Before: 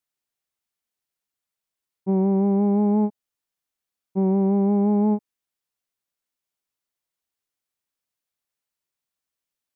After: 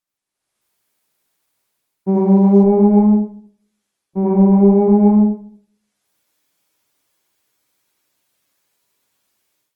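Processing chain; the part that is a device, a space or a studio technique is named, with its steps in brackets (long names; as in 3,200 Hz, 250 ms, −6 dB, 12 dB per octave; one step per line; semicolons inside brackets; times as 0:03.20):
far-field microphone of a smart speaker (convolution reverb RT60 0.45 s, pre-delay 71 ms, DRR −3.5 dB; high-pass filter 100 Hz 12 dB per octave; automatic gain control gain up to 15 dB; level −1 dB; Opus 20 kbit/s 48,000 Hz)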